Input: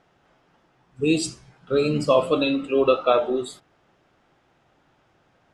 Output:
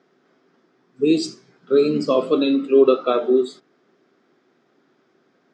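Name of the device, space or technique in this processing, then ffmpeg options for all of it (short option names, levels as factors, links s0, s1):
television speaker: -af "highpass=f=170:w=0.5412,highpass=f=170:w=1.3066,equalizer=f=250:t=q:w=4:g=7,equalizer=f=390:t=q:w=4:g=9,equalizer=f=590:t=q:w=4:g=-3,equalizer=f=860:t=q:w=4:g=-8,equalizer=f=2800:t=q:w=4:g=-7,equalizer=f=4900:t=q:w=4:g=3,lowpass=f=6800:w=0.5412,lowpass=f=6800:w=1.3066"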